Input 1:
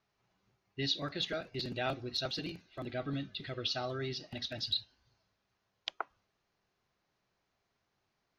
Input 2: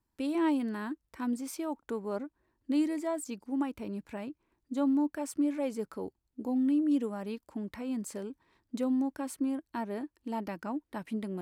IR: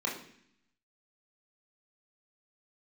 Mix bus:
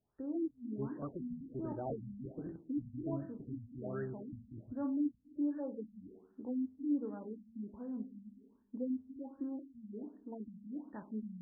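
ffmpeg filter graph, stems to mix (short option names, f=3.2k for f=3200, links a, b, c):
-filter_complex "[0:a]volume=-3.5dB,asplit=2[a][b];[b]volume=-16dB[c];[1:a]volume=-9.5dB,asplit=2[d][e];[e]volume=-11.5dB[f];[2:a]atrim=start_sample=2205[g];[c][f]amix=inputs=2:normalize=0[h];[h][g]afir=irnorm=-1:irlink=0[i];[a][d][i]amix=inputs=3:normalize=0,afftfilt=real='re*lt(b*sr/1024,220*pow(1900/220,0.5+0.5*sin(2*PI*1.3*pts/sr)))':imag='im*lt(b*sr/1024,220*pow(1900/220,0.5+0.5*sin(2*PI*1.3*pts/sr)))':win_size=1024:overlap=0.75"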